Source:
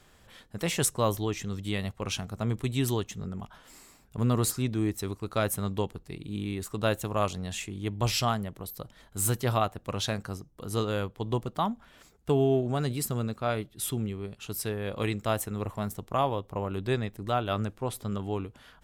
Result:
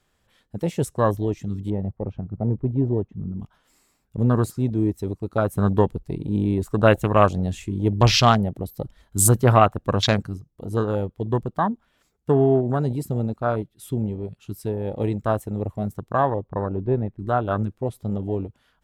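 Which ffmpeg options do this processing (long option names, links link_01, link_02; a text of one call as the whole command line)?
ffmpeg -i in.wav -filter_complex "[0:a]asettb=1/sr,asplit=3[link_01][link_02][link_03];[link_01]atrim=end=1.704[link_04];[link_02]atrim=start=1.7:end=3.4,asetpts=PTS-STARTPTS,afade=type=in:duration=0.004:curve=qsin,afade=type=out:start_time=1.696:duration=0.004:curve=qsin,lowpass=1000[link_05];[link_03]atrim=start=3.396[link_06];[link_04][link_05]acrossfade=duration=0.004:curve1=hsin:curve2=qsin[link_07];[link_07][link_06]acrossfade=duration=0.004:curve1=qsin:curve2=hsin,asettb=1/sr,asplit=3[link_08][link_09][link_10];[link_08]atrim=end=5.574[link_11];[link_09]atrim=start=5.57:end=10.27,asetpts=PTS-STARTPTS,afade=type=in:duration=0.004:curve=qsin,afade=type=out:start_time=4.696:duration=0.004:curve=qsin,acontrast=32[link_12];[link_10]atrim=start=10.266[link_13];[link_11][link_12]acrossfade=duration=0.004:curve1=hsin:curve2=qsin[link_14];[link_14][link_13]acrossfade=duration=0.004:curve1=qsin:curve2=hsin,asettb=1/sr,asplit=3[link_15][link_16][link_17];[link_15]atrim=end=16.304[link_18];[link_16]atrim=start=16.3:end=17.19,asetpts=PTS-STARTPTS,afade=type=in:duration=0.004:curve=qsin,afade=type=out:start_time=0.886:duration=0.004:curve=qsin,lowpass=1800[link_19];[link_17]atrim=start=17.186[link_20];[link_18][link_19]acrossfade=duration=0.004:curve1=hsin:curve2=qsin[link_21];[link_21][link_20]acrossfade=duration=0.004:curve1=qsin:curve2=hsin,afwtdn=0.0282,volume=6.5dB" out.wav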